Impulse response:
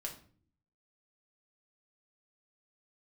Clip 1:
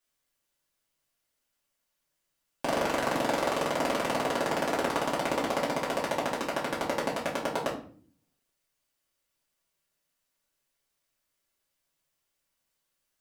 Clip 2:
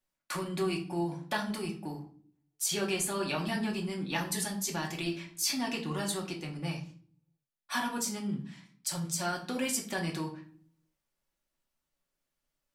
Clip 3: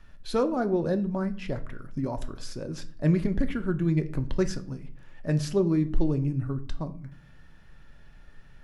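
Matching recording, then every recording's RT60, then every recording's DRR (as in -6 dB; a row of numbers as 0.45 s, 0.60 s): 2; 0.45 s, 0.45 s, no single decay rate; -7.0 dB, -0.5 dB, 8.0 dB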